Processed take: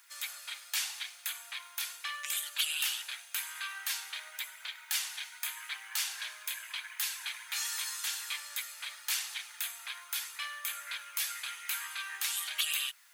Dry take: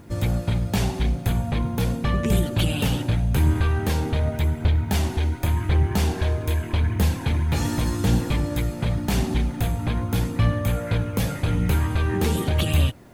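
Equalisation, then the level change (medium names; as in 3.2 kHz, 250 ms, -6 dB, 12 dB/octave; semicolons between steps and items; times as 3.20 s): high-pass 1.3 kHz 24 dB/octave; treble shelf 2.5 kHz +10 dB; -7.5 dB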